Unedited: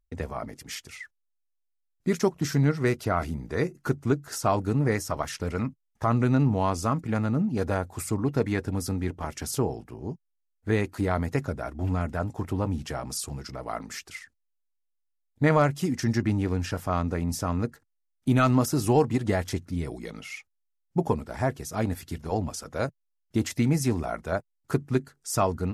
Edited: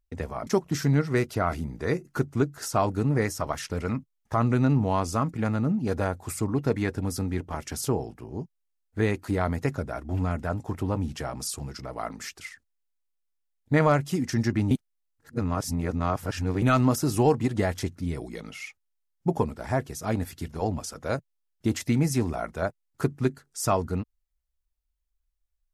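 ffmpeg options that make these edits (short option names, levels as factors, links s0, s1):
-filter_complex "[0:a]asplit=4[s0][s1][s2][s3];[s0]atrim=end=0.472[s4];[s1]atrim=start=2.168:end=16.412[s5];[s2]atrim=start=16.408:end=18.322,asetpts=PTS-STARTPTS,areverse[s6];[s3]atrim=start=18.318[s7];[s4][s5]acrossfade=d=0.004:c1=hsin:c2=hsin[s8];[s8][s6]acrossfade=d=0.004:c1=hsin:c2=hsin[s9];[s9][s7]acrossfade=d=0.004:c1=hsin:c2=hsin"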